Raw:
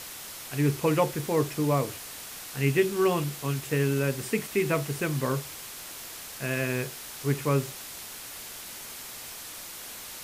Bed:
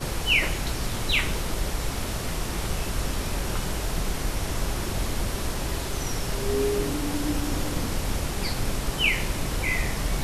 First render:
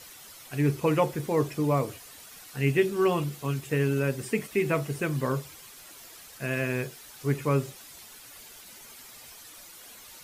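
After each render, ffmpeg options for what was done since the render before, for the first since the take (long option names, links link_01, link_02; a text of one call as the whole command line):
ffmpeg -i in.wav -af "afftdn=noise_reduction=10:noise_floor=-42" out.wav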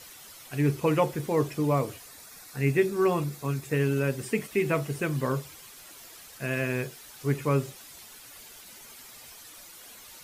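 ffmpeg -i in.wav -filter_complex "[0:a]asettb=1/sr,asplit=3[link_01][link_02][link_03];[link_01]atrim=end=2.064[link_04];[link_02]atrim=start=2.06:end=3.74,asetpts=PTS-STARTPTS,afade=type=in:duration=0.004:curve=qsin,afade=type=out:start_time=1.676:duration=0.004:curve=qsin,equalizer=frequency=3000:width=7.8:gain=-13.5[link_05];[link_03]atrim=start=3.736[link_06];[link_04][link_05]acrossfade=duration=0.004:curve1=hsin:curve2=qsin[link_07];[link_07][link_06]acrossfade=duration=0.004:curve1=qsin:curve2=hsin" out.wav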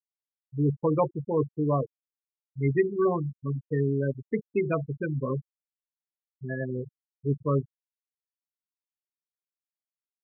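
ffmpeg -i in.wav -af "afwtdn=0.0158,afftfilt=real='re*gte(hypot(re,im),0.126)':imag='im*gte(hypot(re,im),0.126)':win_size=1024:overlap=0.75" out.wav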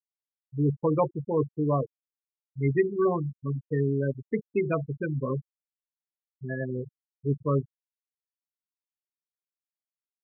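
ffmpeg -i in.wav -af anull out.wav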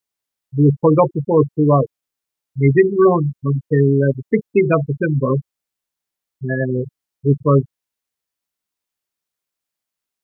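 ffmpeg -i in.wav -af "volume=12dB,alimiter=limit=-2dB:level=0:latency=1" out.wav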